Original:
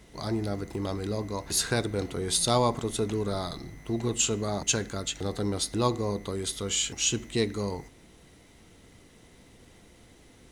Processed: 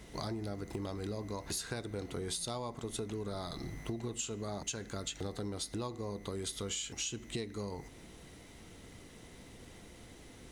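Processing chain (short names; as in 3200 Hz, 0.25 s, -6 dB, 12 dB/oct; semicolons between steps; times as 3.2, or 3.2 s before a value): compressor 12:1, threshold -37 dBFS, peak gain reduction 18.5 dB; gain +1.5 dB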